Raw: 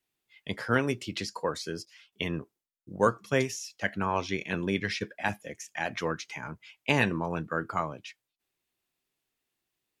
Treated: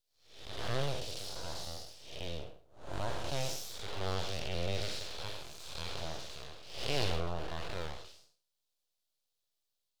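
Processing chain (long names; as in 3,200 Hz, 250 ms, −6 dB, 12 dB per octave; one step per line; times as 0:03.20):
spectrum smeared in time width 271 ms
full-wave rectification
octave-band graphic EQ 250/500/1,000/2,000/4,000 Hz −9/+4/−4/−9/+8 dB
level +1 dB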